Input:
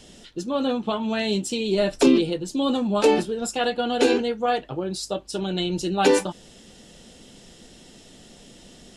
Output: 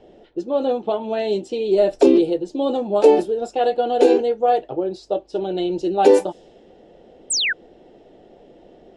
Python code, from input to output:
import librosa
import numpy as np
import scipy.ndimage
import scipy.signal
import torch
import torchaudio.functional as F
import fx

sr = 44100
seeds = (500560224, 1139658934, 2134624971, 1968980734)

y = fx.band_shelf(x, sr, hz=510.0, db=12.5, octaves=1.7)
y = fx.env_lowpass(y, sr, base_hz=2100.0, full_db=-7.0)
y = fx.spec_paint(y, sr, seeds[0], shape='fall', start_s=7.3, length_s=0.23, low_hz=1400.0, high_hz=9100.0, level_db=-14.0)
y = F.gain(torch.from_numpy(y), -6.0).numpy()